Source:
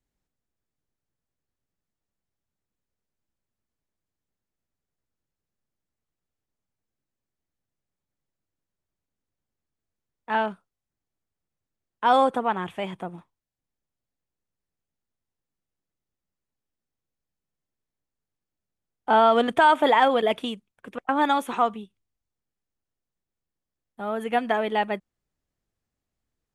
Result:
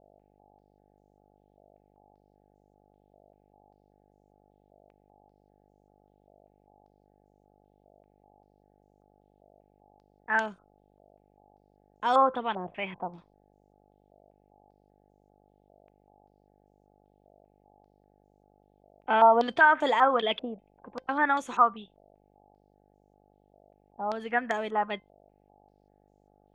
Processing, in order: resonator 520 Hz, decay 0.17 s, harmonics all, mix 40%; buzz 50 Hz, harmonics 17, -63 dBFS -1 dB/oct; stepped low-pass 5.1 Hz 650–6700 Hz; gain -3 dB

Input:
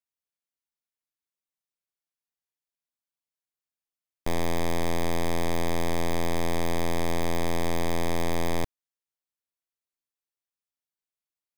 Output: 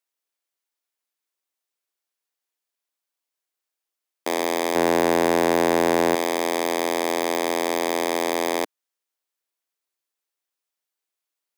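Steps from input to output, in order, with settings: HPF 300 Hz 24 dB/oct; 4.75–6.15 sample leveller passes 2; gain +7.5 dB

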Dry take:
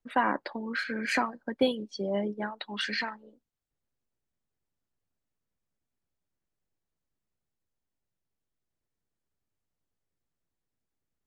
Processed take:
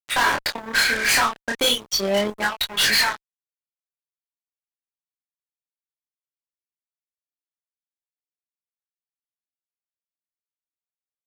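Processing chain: pre-emphasis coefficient 0.97; fuzz box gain 50 dB, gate -59 dBFS; chorus 0.38 Hz, depth 7.9 ms

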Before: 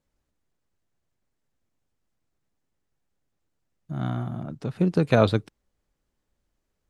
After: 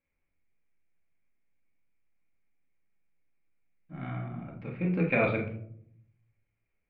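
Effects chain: ladder low-pass 2400 Hz, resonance 85%; reverb RT60 0.65 s, pre-delay 4 ms, DRR -1.5 dB

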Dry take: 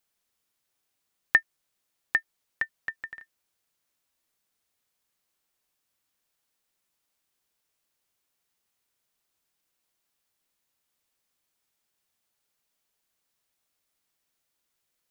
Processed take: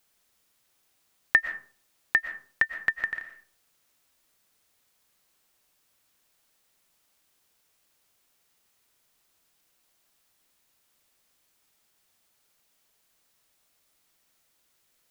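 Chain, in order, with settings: in parallel at +1 dB: negative-ratio compressor -28 dBFS, ratio -1; on the sum: reverb RT60 0.45 s, pre-delay 80 ms, DRR 9 dB; gain -1 dB

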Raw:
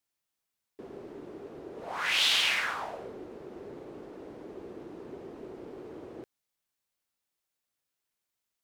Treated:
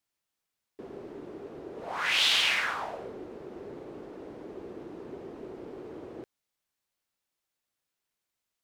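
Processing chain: high shelf 7700 Hz -4 dB; gain +1.5 dB

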